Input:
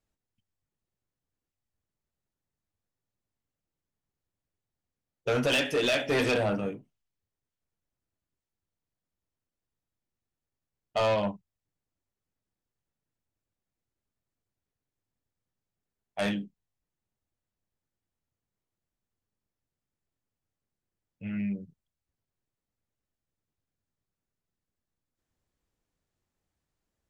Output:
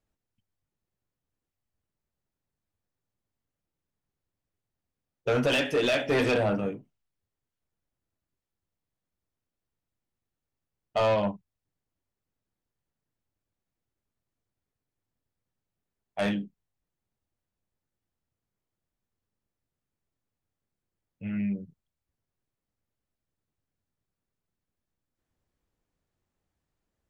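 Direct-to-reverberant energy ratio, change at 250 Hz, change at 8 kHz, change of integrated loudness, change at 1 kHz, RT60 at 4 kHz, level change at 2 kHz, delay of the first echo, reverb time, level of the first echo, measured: none, +2.0 dB, -3.0 dB, +1.0 dB, +1.5 dB, none, 0.0 dB, none, none, none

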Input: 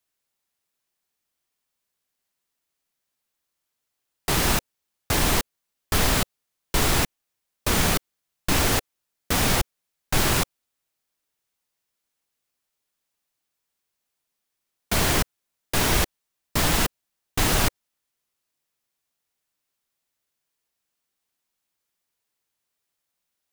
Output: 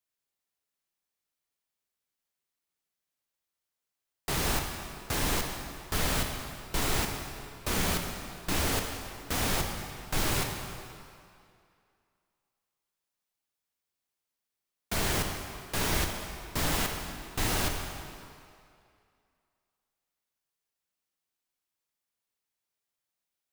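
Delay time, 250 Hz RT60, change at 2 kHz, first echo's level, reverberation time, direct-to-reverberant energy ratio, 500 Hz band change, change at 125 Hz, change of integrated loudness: none, 2.2 s, -7.0 dB, none, 2.4 s, 3.0 dB, -6.5 dB, -7.0 dB, -8.0 dB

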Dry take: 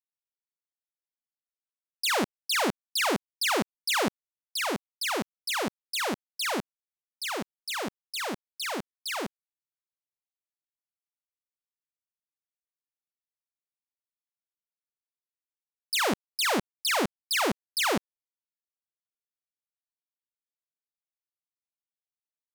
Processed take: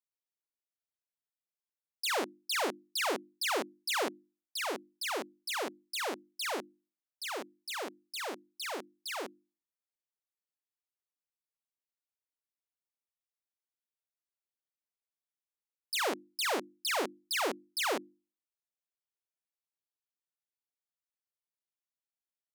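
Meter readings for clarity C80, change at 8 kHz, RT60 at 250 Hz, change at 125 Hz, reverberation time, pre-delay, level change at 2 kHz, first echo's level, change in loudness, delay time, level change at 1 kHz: none, -6.0 dB, none, under -20 dB, none, none, -6.0 dB, none, -6.0 dB, none, -5.5 dB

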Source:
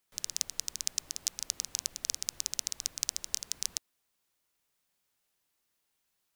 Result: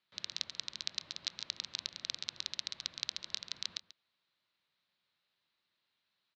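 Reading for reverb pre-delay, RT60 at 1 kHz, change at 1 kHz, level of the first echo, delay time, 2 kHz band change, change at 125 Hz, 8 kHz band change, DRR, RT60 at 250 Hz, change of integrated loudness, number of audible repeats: none, none, -0.5 dB, -16.5 dB, 0.138 s, +1.5 dB, -3.0 dB, -15.5 dB, none, none, -5.5 dB, 1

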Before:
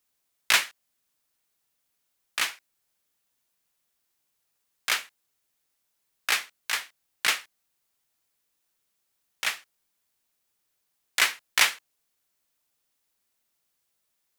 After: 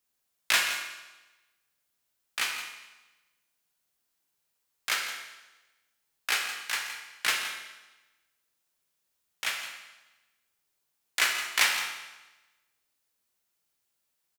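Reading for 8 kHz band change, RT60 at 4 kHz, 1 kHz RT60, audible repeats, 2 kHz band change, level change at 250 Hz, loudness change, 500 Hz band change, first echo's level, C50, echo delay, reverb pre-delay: -2.0 dB, 1.0 s, 1.1 s, 1, -1.5 dB, -1.5 dB, -3.0 dB, -2.0 dB, -12.0 dB, 4.0 dB, 0.168 s, 12 ms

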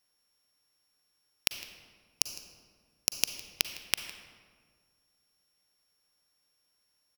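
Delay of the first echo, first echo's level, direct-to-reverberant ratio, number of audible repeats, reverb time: 0.158 s, -19.5 dB, 8.5 dB, 1, 1.7 s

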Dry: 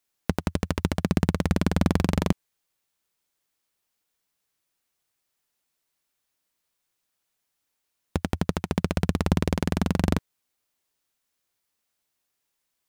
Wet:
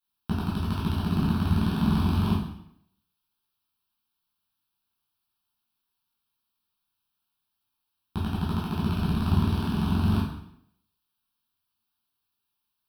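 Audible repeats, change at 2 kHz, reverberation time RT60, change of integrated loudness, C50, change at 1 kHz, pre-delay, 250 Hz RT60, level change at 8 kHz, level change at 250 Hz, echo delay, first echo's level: none, -5.5 dB, 0.70 s, 0.0 dB, 2.0 dB, -1.0 dB, 6 ms, 0.70 s, under -10 dB, 0.0 dB, none, none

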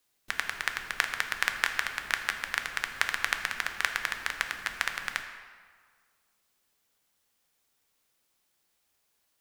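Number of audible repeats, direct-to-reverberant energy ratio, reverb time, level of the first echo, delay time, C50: none, 5.0 dB, 1.7 s, none, none, 7.5 dB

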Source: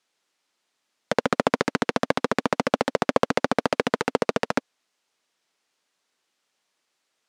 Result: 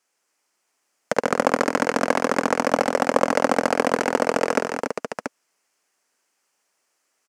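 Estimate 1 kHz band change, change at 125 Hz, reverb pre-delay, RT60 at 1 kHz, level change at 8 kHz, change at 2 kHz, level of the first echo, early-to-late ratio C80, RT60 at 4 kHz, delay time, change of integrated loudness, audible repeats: +4.0 dB, -2.5 dB, none, none, +6.5 dB, +3.5 dB, -11.0 dB, none, none, 50 ms, +3.0 dB, 4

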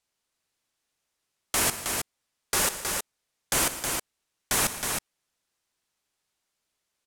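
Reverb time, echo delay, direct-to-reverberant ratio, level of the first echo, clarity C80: none, 63 ms, none, -19.5 dB, none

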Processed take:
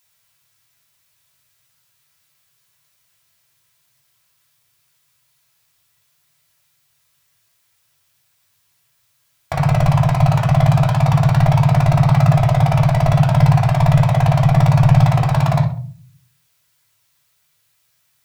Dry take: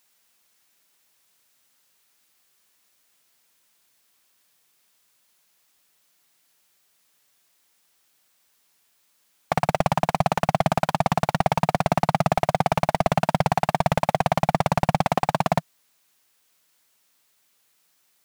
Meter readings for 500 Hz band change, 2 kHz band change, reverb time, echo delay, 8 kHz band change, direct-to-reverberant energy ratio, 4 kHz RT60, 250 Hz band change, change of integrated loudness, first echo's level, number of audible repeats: +1.5 dB, +2.0 dB, 0.45 s, none, n/a, -3.0 dB, 0.30 s, +9.0 dB, +9.0 dB, none, none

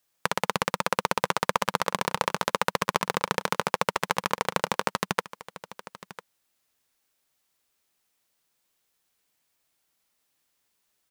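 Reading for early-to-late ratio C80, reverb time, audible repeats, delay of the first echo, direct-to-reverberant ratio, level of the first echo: none, none, 1, 0.999 s, none, -16.5 dB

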